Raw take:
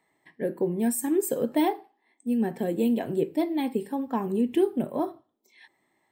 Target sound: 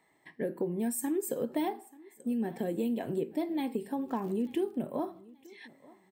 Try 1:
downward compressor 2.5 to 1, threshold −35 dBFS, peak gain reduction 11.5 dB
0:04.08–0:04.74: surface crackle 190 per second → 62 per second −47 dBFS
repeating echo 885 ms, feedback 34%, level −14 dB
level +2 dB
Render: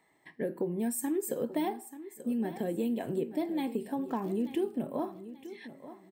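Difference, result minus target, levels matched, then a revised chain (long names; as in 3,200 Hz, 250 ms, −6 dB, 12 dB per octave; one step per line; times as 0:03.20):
echo-to-direct +8.5 dB
downward compressor 2.5 to 1, threshold −35 dBFS, peak gain reduction 11.5 dB
0:04.08–0:04.74: surface crackle 190 per second → 62 per second −47 dBFS
repeating echo 885 ms, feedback 34%, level −22.5 dB
level +2 dB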